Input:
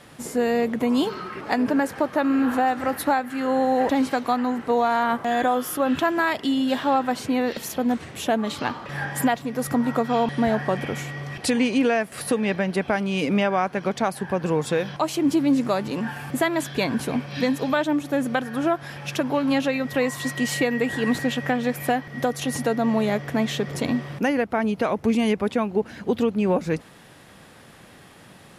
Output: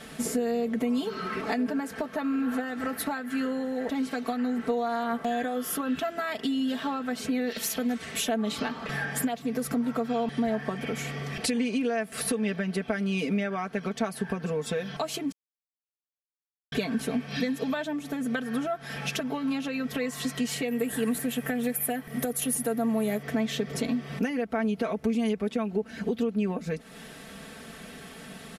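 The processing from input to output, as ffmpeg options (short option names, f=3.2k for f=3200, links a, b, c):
-filter_complex "[0:a]asettb=1/sr,asplit=3[a][b][c];[a]atrim=end=7.494[d];[b]atrim=start=7.49:end=8.29,asetpts=PTS-STARTPTS,afade=t=in:d=0.004:c=qsin,afade=t=out:st=0.796:d=0.004:c=qsin,tiltshelf=f=970:g=-4[e];[c]atrim=start=8.286[f];[d][e]acrossfade=d=0.004:c1=hsin:c2=qsin[g];[g][f]acrossfade=d=0.004:c1=qsin:c2=hsin,asettb=1/sr,asplit=3[h][i][j];[h]atrim=end=20.684[k];[i]atrim=start=20.68:end=23.23,asetpts=PTS-STARTPTS,afade=t=in:d=0.004:c=qsin,afade=t=out:st=2.546:d=0.004:c=qsin,highshelf=f=7.7k:t=q:w=1.5:g=13[l];[j]atrim=start=23.226[m];[k][l]acrossfade=d=0.004:c1=hsin:c2=qsin[n];[n][m]acrossfade=d=0.004:c1=qsin:c2=hsin,asplit=3[o][p][q];[o]atrim=end=15.32,asetpts=PTS-STARTPTS,afade=t=out:st=15.316:d=0.004:c=hsin[r];[p]atrim=start=15.32:end=16.72,asetpts=PTS-STARTPTS,volume=0[s];[q]atrim=start=16.72,asetpts=PTS-STARTPTS,afade=t=in:d=0.004:c=hsin[t];[r][s][t]concat=n=3:v=0:a=1,equalizer=f=950:w=4.1:g=-7.5,acompressor=threshold=-32dB:ratio=6,aecho=1:1:4.5:0.81,volume=2.5dB"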